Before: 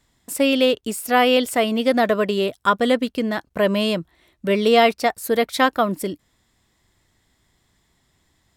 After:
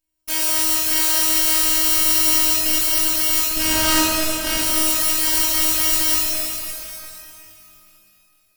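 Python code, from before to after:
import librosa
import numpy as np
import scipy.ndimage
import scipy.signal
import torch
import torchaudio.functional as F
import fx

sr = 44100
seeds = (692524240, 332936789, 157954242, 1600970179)

y = fx.bit_reversed(x, sr, seeds[0], block=128)
y = fx.spacing_loss(y, sr, db_at_10k=36, at=(3.47, 4.58))
y = fx.leveller(y, sr, passes=5)
y = fx.low_shelf(y, sr, hz=250.0, db=-5.0, at=(2.2, 2.77))
y = fx.highpass(y, sr, hz=48.0, slope=12, at=(5.37, 5.82))
y = (np.mod(10.0 ** (11.5 / 20.0) * y + 1.0, 2.0) - 1.0) / 10.0 ** (11.5 / 20.0)
y = fx.robotise(y, sr, hz=316.0)
y = fx.rev_shimmer(y, sr, seeds[1], rt60_s=2.9, semitones=12, shimmer_db=-8, drr_db=-7.5)
y = y * 10.0 ** (-6.0 / 20.0)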